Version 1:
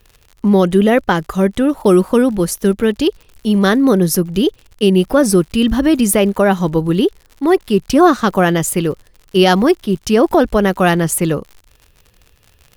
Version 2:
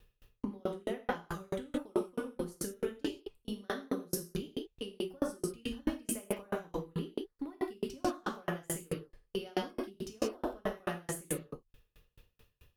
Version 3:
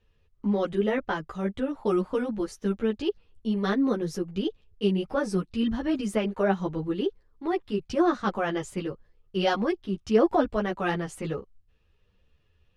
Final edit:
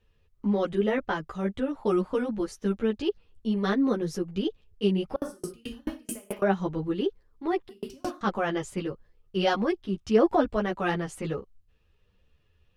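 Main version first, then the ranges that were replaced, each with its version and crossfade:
3
5.16–6.42 s: from 2
7.69–8.21 s: from 2
not used: 1

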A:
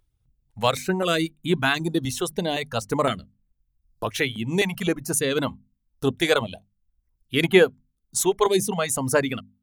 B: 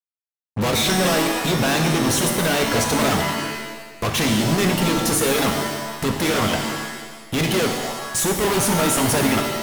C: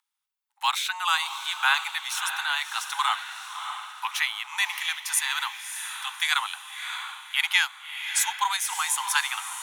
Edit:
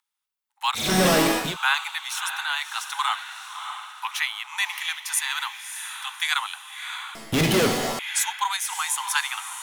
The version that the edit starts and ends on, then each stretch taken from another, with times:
C
0.86–1.45 s: from B, crossfade 0.24 s
7.15–7.99 s: from B
not used: A

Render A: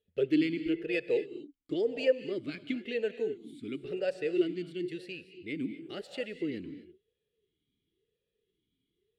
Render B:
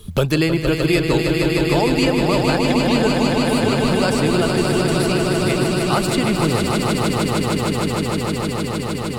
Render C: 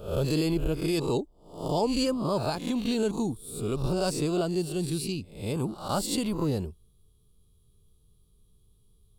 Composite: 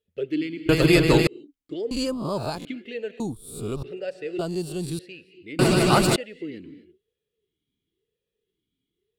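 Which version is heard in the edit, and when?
A
0.69–1.27 s: from B
1.91–2.65 s: from C
3.20–3.83 s: from C
4.39–4.99 s: from C
5.59–6.16 s: from B

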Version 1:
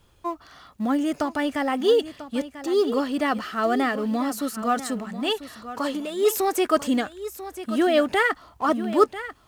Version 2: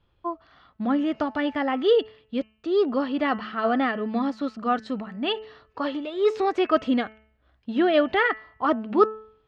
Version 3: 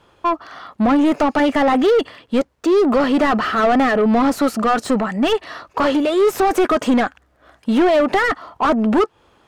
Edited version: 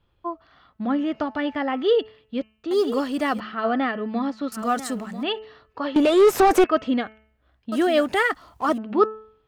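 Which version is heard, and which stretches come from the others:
2
2.71–3.40 s: from 1
4.52–5.23 s: from 1
5.96–6.64 s: from 3
7.72–8.78 s: from 1

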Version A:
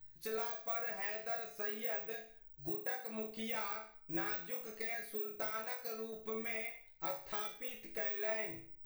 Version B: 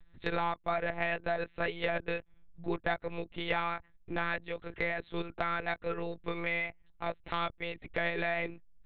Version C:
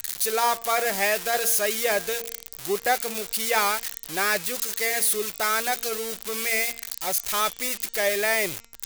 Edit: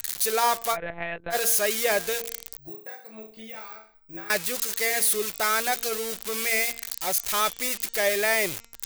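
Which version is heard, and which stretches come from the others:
C
0.74–1.33 s: from B, crossfade 0.06 s
2.57–4.30 s: from A

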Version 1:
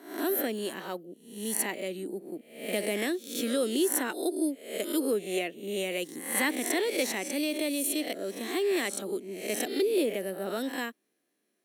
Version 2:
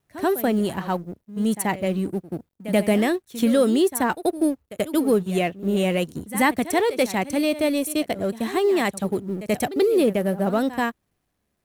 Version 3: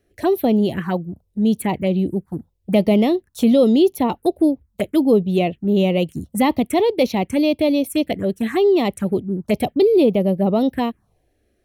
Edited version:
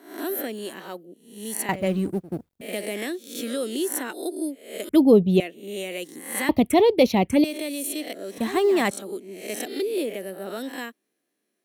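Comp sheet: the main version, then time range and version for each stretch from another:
1
1.69–2.61 s: from 2
4.89–5.40 s: from 3
6.49–7.44 s: from 3
8.38–8.91 s: from 2

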